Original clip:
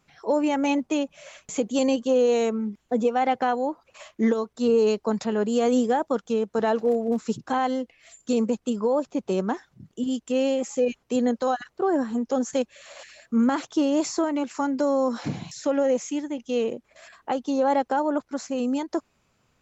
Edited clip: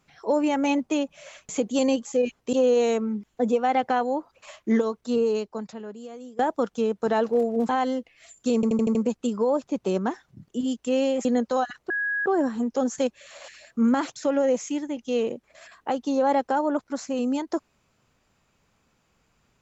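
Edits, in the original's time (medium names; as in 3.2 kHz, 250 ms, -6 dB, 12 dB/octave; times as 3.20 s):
4.50–5.91 s: fade out quadratic, to -21.5 dB
7.21–7.52 s: delete
8.38 s: stutter 0.08 s, 6 plays
10.68–11.16 s: move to 2.05 s
11.81 s: add tone 1.66 kHz -23.5 dBFS 0.36 s
13.71–15.57 s: delete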